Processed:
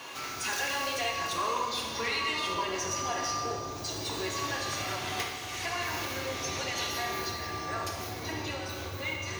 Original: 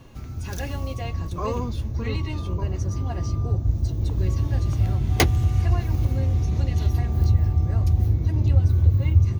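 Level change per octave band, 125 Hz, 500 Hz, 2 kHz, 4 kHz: -24.0, -2.0, +5.0, +6.0 dB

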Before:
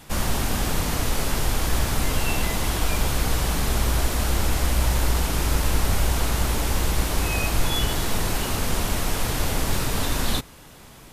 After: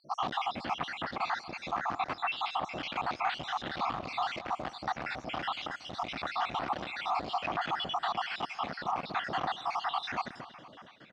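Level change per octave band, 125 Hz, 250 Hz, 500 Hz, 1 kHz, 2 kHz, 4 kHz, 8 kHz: -24.5 dB, -15.0 dB, -10.0 dB, -0.5 dB, -7.0 dB, -10.0 dB, under -25 dB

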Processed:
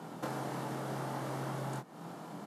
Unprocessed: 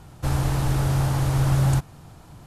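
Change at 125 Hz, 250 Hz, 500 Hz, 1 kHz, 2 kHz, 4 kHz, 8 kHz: -21.5, -12.5, -6.5, -7.5, -10.5, -13.5, -15.5 dB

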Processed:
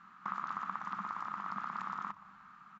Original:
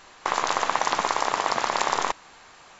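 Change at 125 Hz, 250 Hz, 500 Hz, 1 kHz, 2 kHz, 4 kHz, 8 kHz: -8.5 dB, -11.5 dB, -31.5 dB, -14.0 dB, -17.0 dB, -30.0 dB, n/a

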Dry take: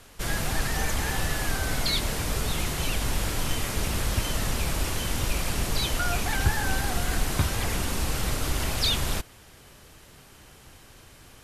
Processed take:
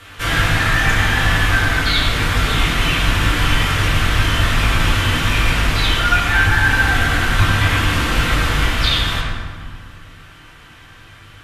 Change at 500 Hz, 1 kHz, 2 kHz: +7.5, +12.5, +16.5 dB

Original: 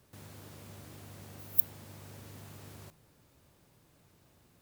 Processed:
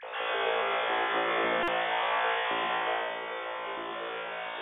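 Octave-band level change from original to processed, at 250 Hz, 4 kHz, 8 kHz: +12.0 dB, +23.5 dB, under -20 dB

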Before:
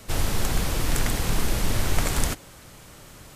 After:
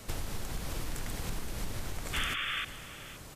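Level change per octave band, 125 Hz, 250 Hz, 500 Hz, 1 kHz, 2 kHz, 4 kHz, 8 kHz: -12.5, -12.5, -12.5, -9.0, -4.0, -5.0, -12.5 dB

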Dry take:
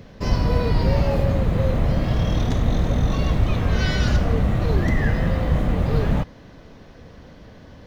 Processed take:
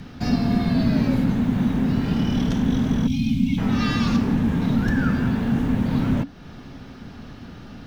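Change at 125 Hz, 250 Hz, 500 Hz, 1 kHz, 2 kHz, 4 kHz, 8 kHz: -3.5 dB, +6.5 dB, -7.0 dB, -2.5 dB, -1.5 dB, -1.0 dB, n/a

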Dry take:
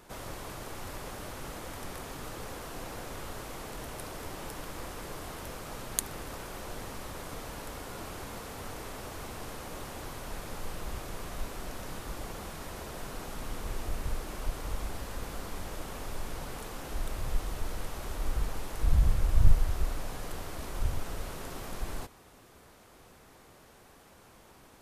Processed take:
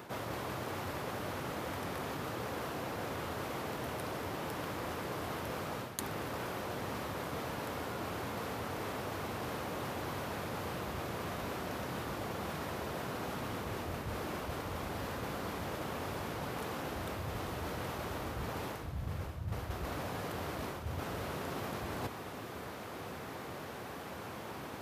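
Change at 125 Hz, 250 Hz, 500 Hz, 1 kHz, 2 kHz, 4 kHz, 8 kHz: -4.0, +3.5, +3.5, +3.5, +2.5, 0.0, -6.5 dB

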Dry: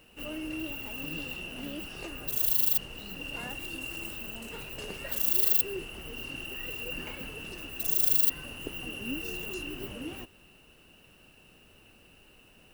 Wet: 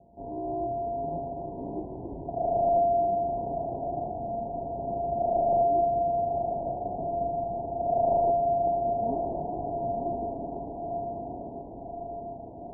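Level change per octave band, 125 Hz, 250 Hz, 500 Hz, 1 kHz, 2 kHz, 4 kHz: +6.5 dB, +4.0 dB, +18.0 dB, +24.0 dB, under -40 dB, under -40 dB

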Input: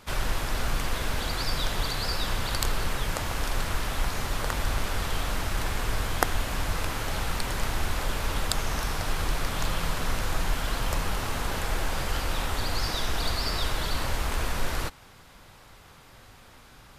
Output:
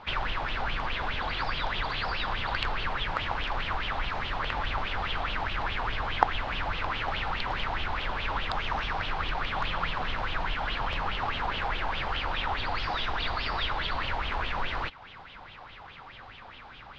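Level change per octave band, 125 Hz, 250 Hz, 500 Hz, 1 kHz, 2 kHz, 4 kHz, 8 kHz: -6.0 dB, -5.5 dB, -3.0 dB, +3.0 dB, +2.0 dB, -1.0 dB, under -20 dB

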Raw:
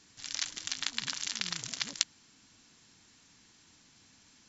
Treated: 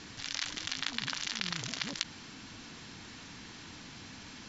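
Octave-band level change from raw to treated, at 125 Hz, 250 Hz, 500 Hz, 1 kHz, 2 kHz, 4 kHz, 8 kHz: +7.5 dB, +8.0 dB, +7.5 dB, +4.0 dB, +2.5 dB, -0.5 dB, n/a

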